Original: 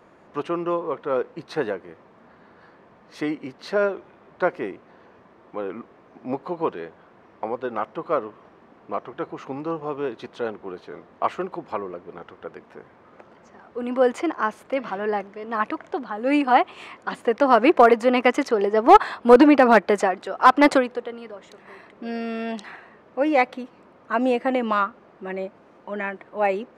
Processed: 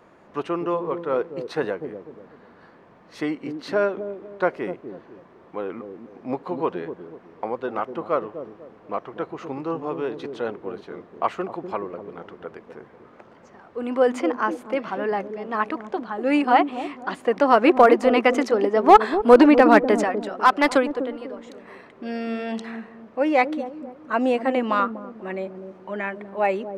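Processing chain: 19.97–20.76 s: peaking EQ 310 Hz -6 dB 3 oct; feedback echo behind a low-pass 247 ms, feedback 34%, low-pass 420 Hz, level -5 dB

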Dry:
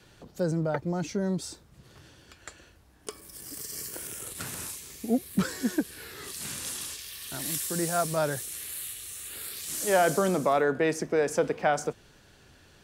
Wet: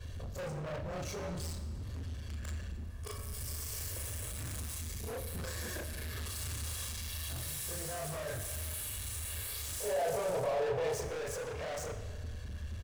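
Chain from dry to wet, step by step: short-time spectra conjugated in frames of 77 ms; resonant low shelf 130 Hz +14 dB, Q 3; comb 1.8 ms, depth 98%; in parallel at +1 dB: compression, threshold -34 dBFS, peak gain reduction 15.5 dB; on the sum: peak limiter -20 dBFS, peak gain reduction 10.5 dB; hard clipper -35 dBFS, distortion -6 dB; time-frequency box 9.81–11.02 s, 400–1000 Hz +8 dB; reverberation RT60 1.8 s, pre-delay 5 ms, DRR 7.5 dB; trim -3.5 dB

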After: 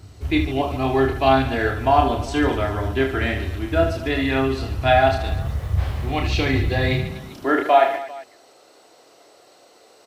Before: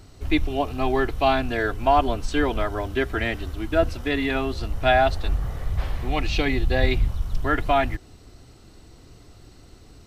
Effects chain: high-pass sweep 81 Hz -> 570 Hz, 6.65–7.81 s; 5.24–7.01 s: word length cut 10-bit, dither none; reverse bouncing-ball echo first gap 30 ms, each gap 1.5×, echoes 5

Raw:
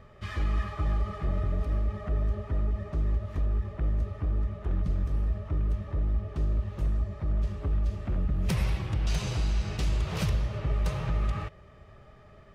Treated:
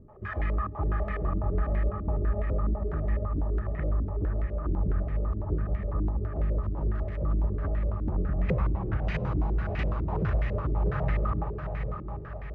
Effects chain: 6.62–7.48 s: crackle 260 per s -34 dBFS; echo that smears into a reverb 734 ms, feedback 48%, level -6 dB; step-sequenced low-pass 12 Hz 310–2000 Hz; trim -1 dB

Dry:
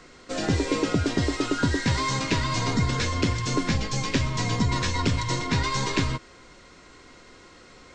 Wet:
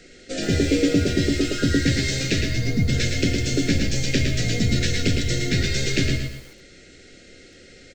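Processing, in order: 2.41–2.88 s: spectral contrast enhancement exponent 1.5; Butterworth band-stop 1 kHz, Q 0.94; hum notches 50/100/150/200/250/300 Hz; feedback comb 95 Hz, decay 0.62 s, harmonics all, mix 50%; feedback delay 110 ms, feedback 29%, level -6 dB; bit-crushed delay 124 ms, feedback 35%, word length 8-bit, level -10 dB; trim +8 dB

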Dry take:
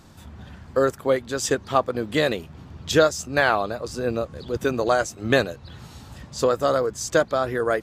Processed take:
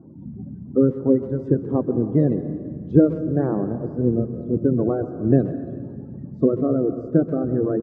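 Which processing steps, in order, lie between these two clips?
coarse spectral quantiser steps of 30 dB; Butterworth band-pass 210 Hz, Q 0.82; bass shelf 210 Hz +2 dB; speakerphone echo 130 ms, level -22 dB; on a send at -10 dB: reverberation RT60 1.9 s, pre-delay 118 ms; on the sum: trim +8 dB

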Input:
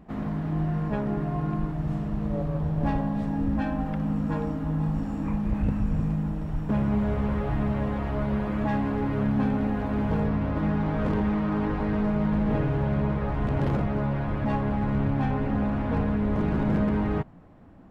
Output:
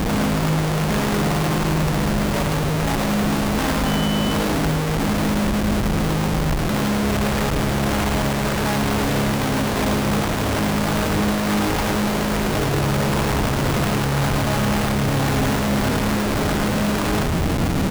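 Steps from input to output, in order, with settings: Chebyshev shaper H 5 -9 dB, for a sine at -16.5 dBFS; Schmitt trigger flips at -45 dBFS; 3.84–4.33 s: whistle 3 kHz -35 dBFS; on a send: delay 107 ms -6 dB; on the sum: trim +2 dB

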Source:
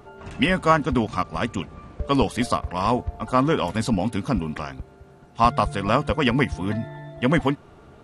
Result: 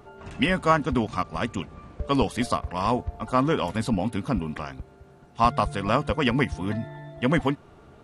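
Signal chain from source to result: 3.71–4.66 s: dynamic bell 6.1 kHz, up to -5 dB, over -50 dBFS, Q 1.4; trim -2.5 dB

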